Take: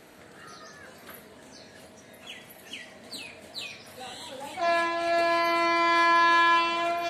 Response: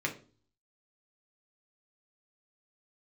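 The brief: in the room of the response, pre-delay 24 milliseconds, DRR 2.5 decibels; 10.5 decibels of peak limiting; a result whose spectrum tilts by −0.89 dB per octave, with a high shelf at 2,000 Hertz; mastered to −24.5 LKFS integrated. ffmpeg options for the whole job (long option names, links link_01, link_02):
-filter_complex "[0:a]highshelf=frequency=2000:gain=-4,alimiter=level_in=1dB:limit=-24dB:level=0:latency=1,volume=-1dB,asplit=2[link_01][link_02];[1:a]atrim=start_sample=2205,adelay=24[link_03];[link_02][link_03]afir=irnorm=-1:irlink=0,volume=-8.5dB[link_04];[link_01][link_04]amix=inputs=2:normalize=0,volume=8.5dB"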